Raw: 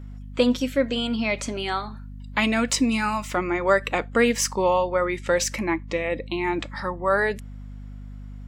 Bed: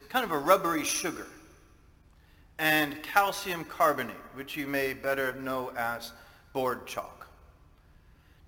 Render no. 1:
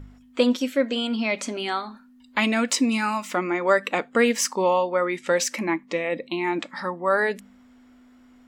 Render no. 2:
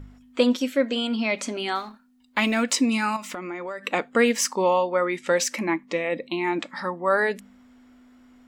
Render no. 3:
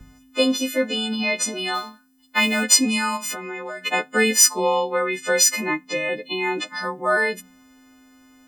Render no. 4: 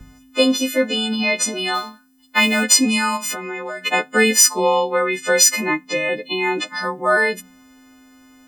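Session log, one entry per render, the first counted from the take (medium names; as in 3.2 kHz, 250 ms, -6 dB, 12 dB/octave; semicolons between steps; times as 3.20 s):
de-hum 50 Hz, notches 4
1.75–2.63 s: companding laws mixed up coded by A; 3.16–3.84 s: compression, threshold -30 dBFS
partials quantised in pitch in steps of 3 st
trim +3.5 dB; peak limiter -1 dBFS, peak gain reduction 3 dB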